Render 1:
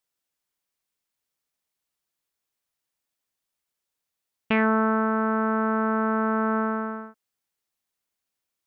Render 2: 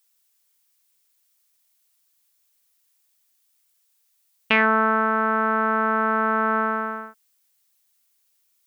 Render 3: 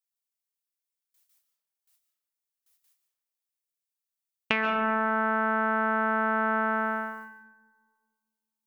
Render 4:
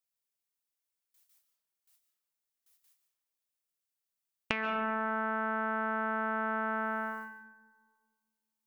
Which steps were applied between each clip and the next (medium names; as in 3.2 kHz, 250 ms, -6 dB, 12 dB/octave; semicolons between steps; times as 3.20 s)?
tilt EQ +3.5 dB/octave; trim +4.5 dB
compression, threshold -21 dBFS, peak gain reduction 9 dB; gate with hold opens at -55 dBFS; on a send at -5.5 dB: reverberation RT60 1.7 s, pre-delay 101 ms; on the sum: trim -1 dB
compression 4:1, threshold -29 dBFS, peak gain reduction 8.5 dB